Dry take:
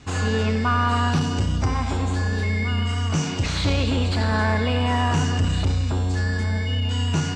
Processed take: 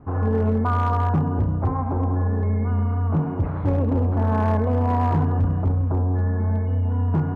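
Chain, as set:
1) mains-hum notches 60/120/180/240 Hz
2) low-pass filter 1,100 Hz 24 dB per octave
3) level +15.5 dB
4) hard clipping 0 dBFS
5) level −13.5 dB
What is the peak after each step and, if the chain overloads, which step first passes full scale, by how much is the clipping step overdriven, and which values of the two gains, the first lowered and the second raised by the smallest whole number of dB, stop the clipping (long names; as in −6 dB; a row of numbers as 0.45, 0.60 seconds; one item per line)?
−9.0, −10.0, +5.5, 0.0, −13.5 dBFS
step 3, 5.5 dB
step 3 +9.5 dB, step 5 −7.5 dB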